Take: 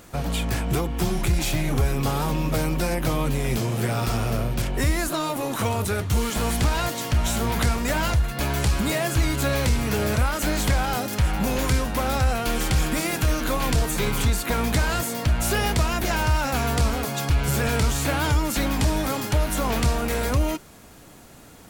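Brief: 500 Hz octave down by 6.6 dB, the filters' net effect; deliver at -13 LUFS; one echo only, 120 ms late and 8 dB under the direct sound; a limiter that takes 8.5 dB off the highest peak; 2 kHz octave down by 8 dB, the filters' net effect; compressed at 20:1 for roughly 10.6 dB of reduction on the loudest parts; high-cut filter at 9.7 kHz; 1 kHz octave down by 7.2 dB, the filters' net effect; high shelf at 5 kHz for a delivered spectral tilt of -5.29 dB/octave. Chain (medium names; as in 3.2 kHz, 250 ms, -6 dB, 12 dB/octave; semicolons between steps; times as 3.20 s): low-pass 9.7 kHz; peaking EQ 500 Hz -6.5 dB; peaking EQ 1 kHz -5 dB; peaking EQ 2 kHz -7.5 dB; treble shelf 5 kHz -6 dB; compression 20:1, threshold -27 dBFS; peak limiter -27 dBFS; delay 120 ms -8 dB; trim +22 dB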